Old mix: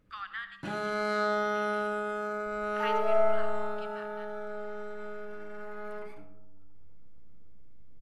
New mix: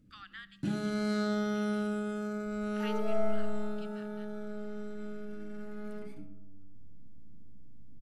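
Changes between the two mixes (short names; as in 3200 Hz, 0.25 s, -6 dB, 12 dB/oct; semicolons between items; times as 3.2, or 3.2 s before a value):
speech: send -8.5 dB; master: add graphic EQ 125/250/500/1000/2000/8000 Hz +5/+10/-6/-12/-5/+3 dB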